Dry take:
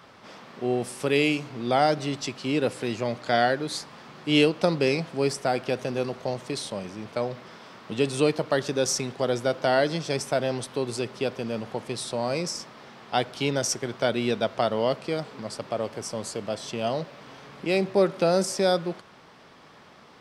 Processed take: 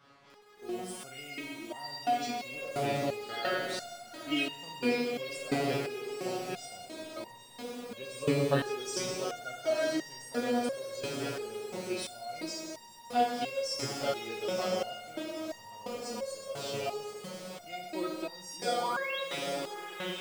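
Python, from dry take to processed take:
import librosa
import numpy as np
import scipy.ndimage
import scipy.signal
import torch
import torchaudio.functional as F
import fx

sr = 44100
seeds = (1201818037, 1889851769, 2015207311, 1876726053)

p1 = fx.pitch_ramps(x, sr, semitones=-1.5, every_ms=196)
p2 = fx.spec_paint(p1, sr, seeds[0], shape='rise', start_s=18.53, length_s=0.67, low_hz=270.0, high_hz=4100.0, level_db=-28.0)
p3 = p2 + fx.echo_diffused(p2, sr, ms=956, feedback_pct=47, wet_db=-7.5, dry=0)
p4 = fx.rev_schroeder(p3, sr, rt60_s=1.7, comb_ms=32, drr_db=2.0)
p5 = fx.quant_dither(p4, sr, seeds[1], bits=6, dither='none')
p6 = p4 + (p5 * 10.0 ** (-3.5 / 20.0))
p7 = fx.resonator_held(p6, sr, hz=2.9, low_hz=140.0, high_hz=940.0)
y = p7 * 10.0 ** (1.5 / 20.0)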